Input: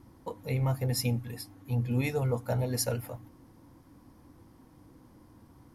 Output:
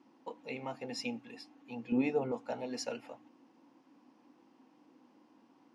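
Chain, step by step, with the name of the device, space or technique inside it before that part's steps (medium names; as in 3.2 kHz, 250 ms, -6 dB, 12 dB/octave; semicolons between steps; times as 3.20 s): television speaker (cabinet simulation 230–6600 Hz, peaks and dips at 250 Hz +4 dB, 810 Hz +5 dB, 2.7 kHz +10 dB); 1.92–2.32 s: tilt shelf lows +8.5 dB, about 1.3 kHz; trim -6.5 dB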